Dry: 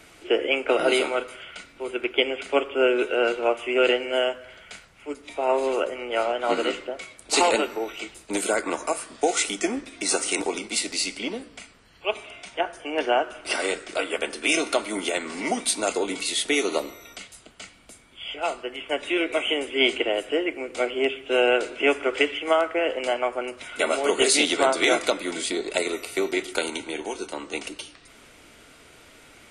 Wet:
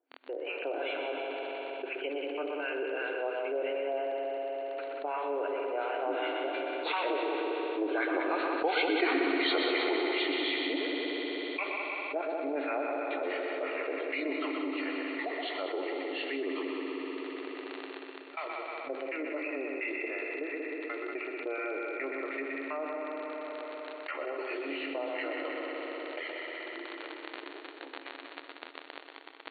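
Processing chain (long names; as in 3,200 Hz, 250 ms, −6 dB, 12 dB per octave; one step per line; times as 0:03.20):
hearing-aid frequency compression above 2,200 Hz 1.5 to 1
source passing by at 0:09.14, 22 m/s, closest 2.4 metres
noise gate with hold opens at −54 dBFS
automatic gain control gain up to 14.5 dB
two-band tremolo in antiphase 2.8 Hz, depth 100%, crossover 960 Hz
surface crackle 24 per second −48 dBFS
high-frequency loss of the air 280 metres
echo machine with several playback heads 62 ms, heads second and third, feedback 69%, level −8 dB
convolution reverb RT60 2.3 s, pre-delay 67 ms, DRR 14 dB
brick-wall band-pass 260–4,500 Hz
envelope flattener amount 70%
level −5 dB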